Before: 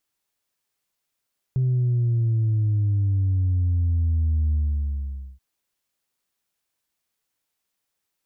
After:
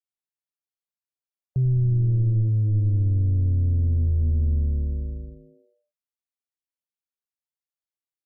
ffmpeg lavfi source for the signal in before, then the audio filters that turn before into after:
-f lavfi -i "aevalsrc='0.119*clip((3.83-t)/0.86,0,1)*tanh(1.06*sin(2*PI*130*3.83/log(65/130)*(exp(log(65/130)*t/3.83)-1)))/tanh(1.06)':d=3.83:s=44100"
-filter_complex "[0:a]afftdn=nr=21:nf=-46,adynamicequalizer=threshold=0.0112:dfrequency=190:dqfactor=1.6:tfrequency=190:tqfactor=1.6:attack=5:release=100:ratio=0.375:range=1.5:mode=boostabove:tftype=bell,asplit=7[a][b][c][d][e][f][g];[b]adelay=89,afreqshift=-110,volume=-13.5dB[h];[c]adelay=178,afreqshift=-220,volume=-18.5dB[i];[d]adelay=267,afreqshift=-330,volume=-23.6dB[j];[e]adelay=356,afreqshift=-440,volume=-28.6dB[k];[f]adelay=445,afreqshift=-550,volume=-33.6dB[l];[g]adelay=534,afreqshift=-660,volume=-38.7dB[m];[a][h][i][j][k][l][m]amix=inputs=7:normalize=0"

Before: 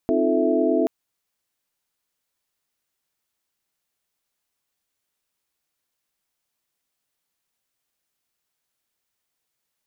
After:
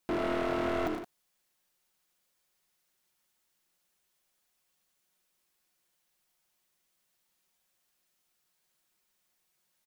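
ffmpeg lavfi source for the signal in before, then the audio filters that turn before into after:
-f lavfi -i "aevalsrc='0.0668*(sin(2*PI*261.63*t)+sin(2*PI*311.13*t)+sin(2*PI*349.23*t)+sin(2*PI*440*t)+sin(2*PI*659.26*t))':d=0.78:s=44100"
-af "aecho=1:1:5.5:0.49,volume=29dB,asoftclip=hard,volume=-29dB,aecho=1:1:78.72|110.8|169.1:0.447|0.447|0.282"

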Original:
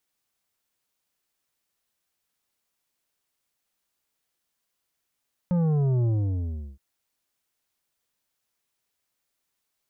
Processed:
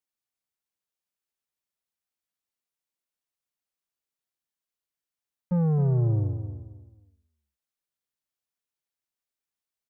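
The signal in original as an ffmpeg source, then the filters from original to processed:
-f lavfi -i "aevalsrc='0.0891*clip((1.27-t)/0.73,0,1)*tanh(2.82*sin(2*PI*180*1.27/log(65/180)*(exp(log(65/180)*t/1.27)-1)))/tanh(2.82)':d=1.27:s=44100"
-af "agate=range=-13dB:threshold=-27dB:ratio=16:detection=peak,aeval=exprs='0.0944*(cos(1*acos(clip(val(0)/0.0944,-1,1)))-cos(1*PI/2))+0.000531*(cos(4*acos(clip(val(0)/0.0944,-1,1)))-cos(4*PI/2))+0.000531*(cos(5*acos(clip(val(0)/0.0944,-1,1)))-cos(5*PI/2))':c=same,aecho=1:1:265|530|795:0.316|0.0854|0.0231"

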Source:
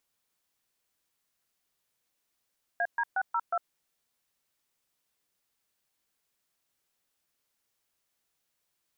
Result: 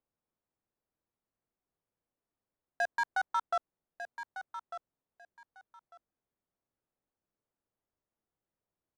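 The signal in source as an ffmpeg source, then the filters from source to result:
-f lavfi -i "aevalsrc='0.0398*clip(min(mod(t,0.181),0.054-mod(t,0.181))/0.002,0,1)*(eq(floor(t/0.181),0)*(sin(2*PI*697*mod(t,0.181))+sin(2*PI*1633*mod(t,0.181)))+eq(floor(t/0.181),1)*(sin(2*PI*941*mod(t,0.181))+sin(2*PI*1633*mod(t,0.181)))+eq(floor(t/0.181),2)*(sin(2*PI*770*mod(t,0.181))+sin(2*PI*1477*mod(t,0.181)))+eq(floor(t/0.181),3)*(sin(2*PI*941*mod(t,0.181))+sin(2*PI*1336*mod(t,0.181)))+eq(floor(t/0.181),4)*(sin(2*PI*697*mod(t,0.181))+sin(2*PI*1336*mod(t,0.181))))':d=0.905:s=44100"
-filter_complex "[0:a]adynamicsmooth=sensitivity=7:basefreq=930,asplit=2[a][b];[b]aecho=0:1:1198|2396:0.282|0.0507[c];[a][c]amix=inputs=2:normalize=0"

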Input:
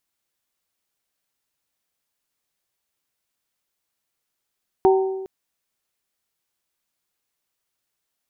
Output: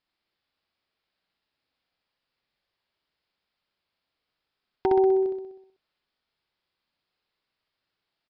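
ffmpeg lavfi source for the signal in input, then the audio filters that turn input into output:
-f lavfi -i "aevalsrc='0.282*pow(10,-3*t/1.22)*sin(2*PI*382*t)+0.15*pow(10,-3*t/0.751)*sin(2*PI*764*t)+0.0794*pow(10,-3*t/0.661)*sin(2*PI*916.8*t)':d=0.41:s=44100"
-af "acompressor=threshold=-21dB:ratio=6,aresample=11025,volume=16dB,asoftclip=hard,volume=-16dB,aresample=44100,aecho=1:1:63|126|189|252|315|378|441|504:0.668|0.388|0.225|0.13|0.0756|0.0439|0.0254|0.0148"

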